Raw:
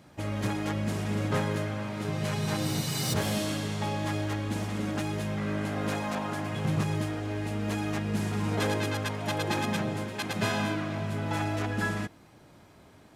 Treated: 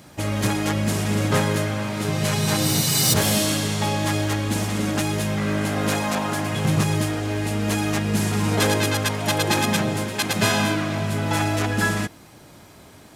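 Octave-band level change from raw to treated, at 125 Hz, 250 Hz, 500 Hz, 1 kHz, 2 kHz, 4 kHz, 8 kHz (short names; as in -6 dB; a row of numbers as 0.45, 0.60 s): +7.5, +7.5, +7.5, +8.0, +9.0, +11.5, +14.5 dB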